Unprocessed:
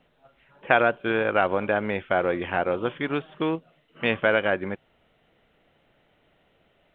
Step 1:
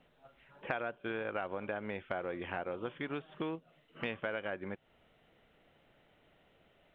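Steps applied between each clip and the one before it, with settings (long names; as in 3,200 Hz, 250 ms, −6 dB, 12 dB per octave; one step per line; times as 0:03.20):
downward compressor 3 to 1, threshold −35 dBFS, peak gain reduction 16 dB
level −3 dB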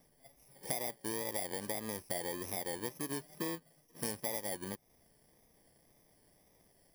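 samples in bit-reversed order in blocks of 32 samples
tape wow and flutter 68 cents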